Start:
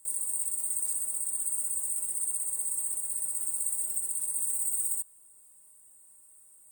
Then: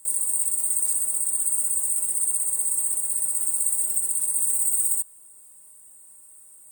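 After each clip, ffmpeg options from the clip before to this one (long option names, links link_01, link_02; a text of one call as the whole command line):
ffmpeg -i in.wav -af "highpass=68,volume=7.5dB" out.wav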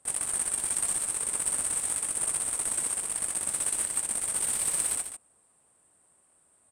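ffmpeg -i in.wav -af "adynamicsmooth=sensitivity=4:basefreq=4100,aecho=1:1:145:0.355,aresample=32000,aresample=44100" out.wav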